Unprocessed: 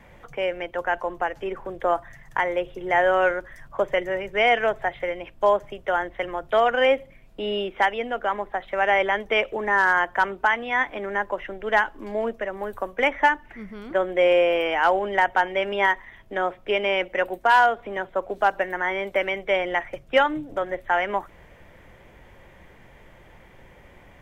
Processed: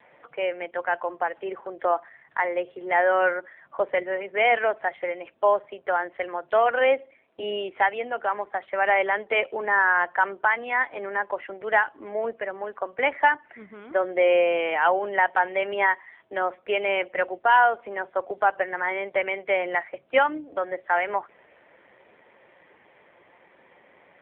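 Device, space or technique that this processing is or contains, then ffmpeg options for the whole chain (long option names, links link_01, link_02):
telephone: -filter_complex "[0:a]asplit=3[link_01][link_02][link_03];[link_01]afade=type=out:start_time=6.78:duration=0.02[link_04];[link_02]highpass=frequency=220:width=0.5412,highpass=frequency=220:width=1.3066,afade=type=in:start_time=6.78:duration=0.02,afade=type=out:start_time=7.41:duration=0.02[link_05];[link_03]afade=type=in:start_time=7.41:duration=0.02[link_06];[link_04][link_05][link_06]amix=inputs=3:normalize=0,highpass=330,lowpass=3500" -ar 8000 -c:a libopencore_amrnb -b:a 7400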